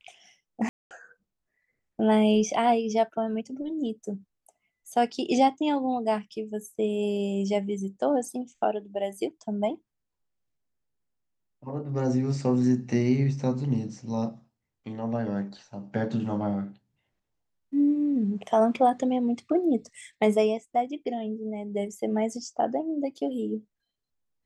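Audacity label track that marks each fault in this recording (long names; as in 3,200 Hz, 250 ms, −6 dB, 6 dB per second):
0.690000	0.910000	drop-out 218 ms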